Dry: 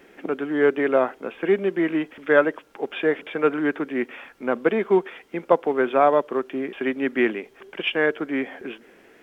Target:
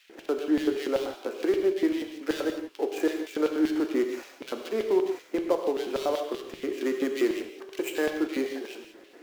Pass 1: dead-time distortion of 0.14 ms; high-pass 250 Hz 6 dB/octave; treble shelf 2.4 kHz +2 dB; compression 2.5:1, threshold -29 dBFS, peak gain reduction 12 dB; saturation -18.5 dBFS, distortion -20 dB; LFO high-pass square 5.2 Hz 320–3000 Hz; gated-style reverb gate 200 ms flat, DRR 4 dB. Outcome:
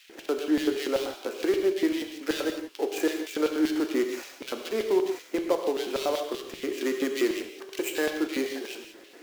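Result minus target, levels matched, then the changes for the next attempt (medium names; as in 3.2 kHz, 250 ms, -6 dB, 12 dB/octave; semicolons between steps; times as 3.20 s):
4 kHz band +4.5 dB
change: treble shelf 2.4 kHz -6 dB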